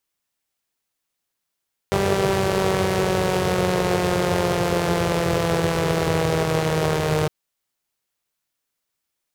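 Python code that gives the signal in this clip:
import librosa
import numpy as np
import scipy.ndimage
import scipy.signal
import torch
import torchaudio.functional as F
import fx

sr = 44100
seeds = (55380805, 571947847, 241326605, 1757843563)

y = fx.engine_four_rev(sr, seeds[0], length_s=5.36, rpm=5900, resonances_hz=(97.0, 140.0, 410.0), end_rpm=4600)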